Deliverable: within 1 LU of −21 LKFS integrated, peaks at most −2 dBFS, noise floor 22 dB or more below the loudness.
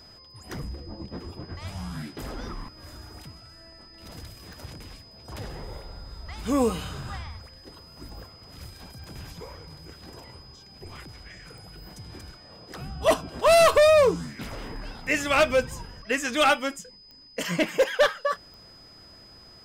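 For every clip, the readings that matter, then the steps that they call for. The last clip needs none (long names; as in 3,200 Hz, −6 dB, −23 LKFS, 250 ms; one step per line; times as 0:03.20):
number of clicks 6; interfering tone 5,000 Hz; level of the tone −49 dBFS; integrated loudness −24.0 LKFS; sample peak −12.0 dBFS; target loudness −21.0 LKFS
→ click removal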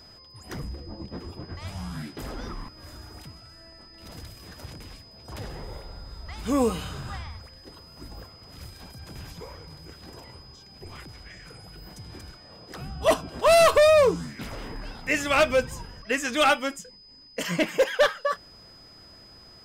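number of clicks 0; interfering tone 5,000 Hz; level of the tone −49 dBFS
→ notch filter 5,000 Hz, Q 30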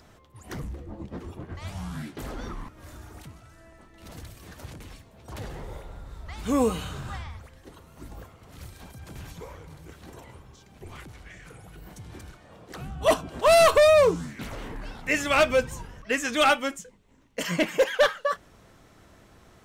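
interfering tone none found; integrated loudness −24.0 LKFS; sample peak −12.0 dBFS; target loudness −21.0 LKFS
→ level +3 dB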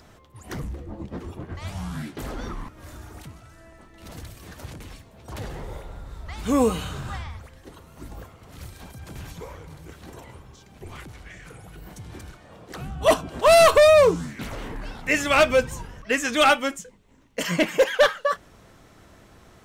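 integrated loudness −21.0 LKFS; sample peak −9.0 dBFS; background noise floor −52 dBFS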